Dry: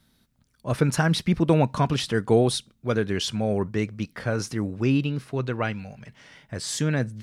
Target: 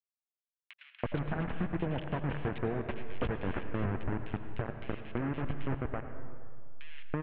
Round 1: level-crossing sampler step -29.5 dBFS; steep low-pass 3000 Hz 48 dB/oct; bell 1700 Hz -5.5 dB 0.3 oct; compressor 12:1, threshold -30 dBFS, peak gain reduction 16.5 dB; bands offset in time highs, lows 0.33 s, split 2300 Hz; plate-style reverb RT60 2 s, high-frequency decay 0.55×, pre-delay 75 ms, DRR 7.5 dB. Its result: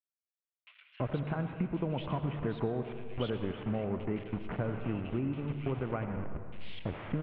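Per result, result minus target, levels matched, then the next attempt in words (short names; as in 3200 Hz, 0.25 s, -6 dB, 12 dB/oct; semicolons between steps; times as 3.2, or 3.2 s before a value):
level-crossing sampler: distortion -13 dB; 2000 Hz band -4.5 dB
level-crossing sampler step -17.5 dBFS; steep low-pass 3000 Hz 48 dB/oct; bell 1700 Hz -5.5 dB 0.3 oct; compressor 12:1, threshold -30 dBFS, peak gain reduction 16.5 dB; bands offset in time highs, lows 0.33 s, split 2300 Hz; plate-style reverb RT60 2 s, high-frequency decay 0.55×, pre-delay 75 ms, DRR 7.5 dB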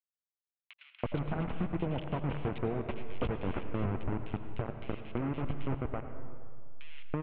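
2000 Hz band -4.0 dB
level-crossing sampler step -17.5 dBFS; steep low-pass 3000 Hz 48 dB/oct; bell 1700 Hz +4 dB 0.3 oct; compressor 12:1, threshold -30 dBFS, peak gain reduction 16.5 dB; bands offset in time highs, lows 0.33 s, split 2300 Hz; plate-style reverb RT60 2 s, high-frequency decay 0.55×, pre-delay 75 ms, DRR 7.5 dB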